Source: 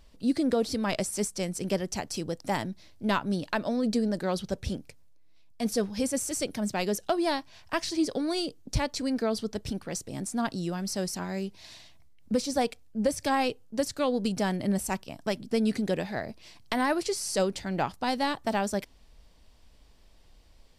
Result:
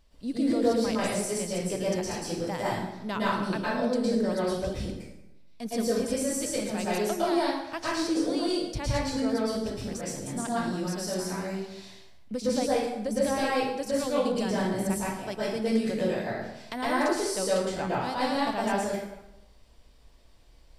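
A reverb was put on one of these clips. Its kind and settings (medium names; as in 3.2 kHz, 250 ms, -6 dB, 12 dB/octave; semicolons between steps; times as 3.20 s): plate-style reverb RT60 0.93 s, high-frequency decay 0.7×, pre-delay 100 ms, DRR -7.5 dB; trim -7 dB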